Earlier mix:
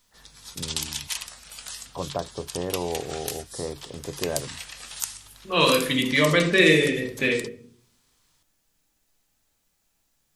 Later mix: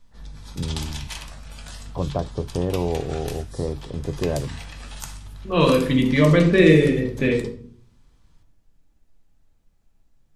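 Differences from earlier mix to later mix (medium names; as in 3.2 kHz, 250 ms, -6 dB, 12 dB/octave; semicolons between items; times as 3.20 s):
background: send on; master: add tilt EQ -3.5 dB/octave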